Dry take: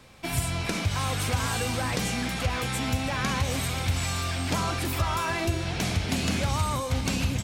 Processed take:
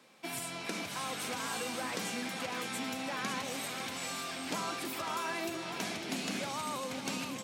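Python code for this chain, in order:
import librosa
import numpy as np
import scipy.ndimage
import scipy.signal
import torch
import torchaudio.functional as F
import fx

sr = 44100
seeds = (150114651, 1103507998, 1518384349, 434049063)

y = scipy.signal.sosfilt(scipy.signal.butter(4, 200.0, 'highpass', fs=sr, output='sos'), x)
y = y + 10.0 ** (-9.5 / 20.0) * np.pad(y, (int(553 * sr / 1000.0), 0))[:len(y)]
y = y * librosa.db_to_amplitude(-7.5)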